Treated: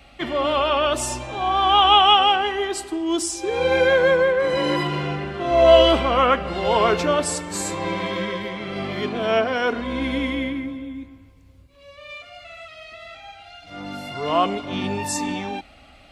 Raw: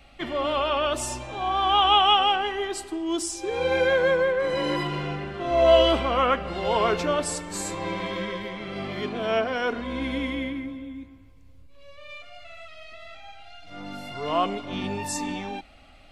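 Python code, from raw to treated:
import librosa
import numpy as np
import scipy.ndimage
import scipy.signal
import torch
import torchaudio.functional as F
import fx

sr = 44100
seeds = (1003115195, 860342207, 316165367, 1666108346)

y = scipy.signal.sosfilt(scipy.signal.butter(2, 40.0, 'highpass', fs=sr, output='sos'), x)
y = F.gain(torch.from_numpy(y), 4.5).numpy()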